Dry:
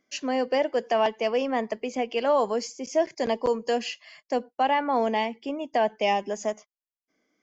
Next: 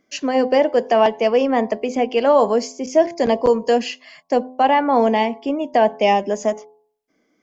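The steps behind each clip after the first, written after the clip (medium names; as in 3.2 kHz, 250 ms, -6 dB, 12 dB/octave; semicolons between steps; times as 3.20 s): tilt shelf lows +3 dB; de-hum 85.14 Hz, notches 13; trim +7.5 dB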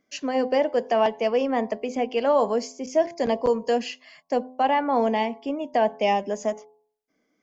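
peaking EQ 350 Hz -4.5 dB 0.22 oct; trim -6 dB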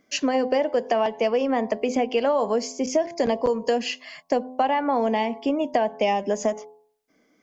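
compression, threshold -27 dBFS, peak gain reduction 11.5 dB; trim +8 dB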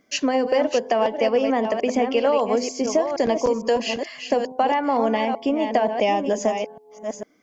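chunks repeated in reverse 452 ms, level -7 dB; trim +1.5 dB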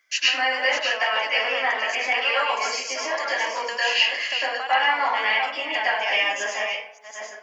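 resonant high-pass 1.7 kHz, resonance Q 1.6; reverberation RT60 0.55 s, pre-delay 97 ms, DRR -9.5 dB; trim -1.5 dB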